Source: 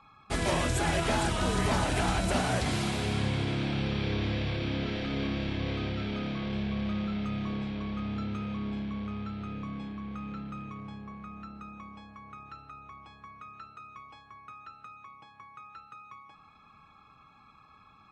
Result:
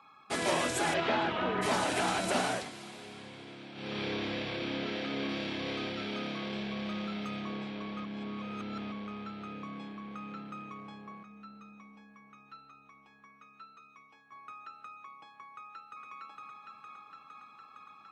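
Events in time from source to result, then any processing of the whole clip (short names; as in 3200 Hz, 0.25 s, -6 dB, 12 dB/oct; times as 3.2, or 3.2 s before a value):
0.93–1.61 LPF 4700 Hz -> 2600 Hz 24 dB/oct
2.45–3.99 dip -13 dB, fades 0.25 s
5.29–7.41 high shelf 5500 Hz +7.5 dB
8.04–8.92 reverse
11.23–14.32 metallic resonator 66 Hz, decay 0.22 s, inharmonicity 0.008
15.5–16.03 echo throw 0.46 s, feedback 80%, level -0.5 dB
whole clip: HPF 260 Hz 12 dB/oct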